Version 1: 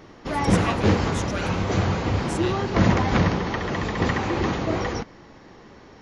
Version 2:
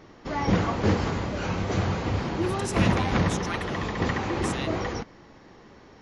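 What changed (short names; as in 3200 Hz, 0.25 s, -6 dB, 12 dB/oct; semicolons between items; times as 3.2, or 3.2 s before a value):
speech: entry +2.15 s; background -3.5 dB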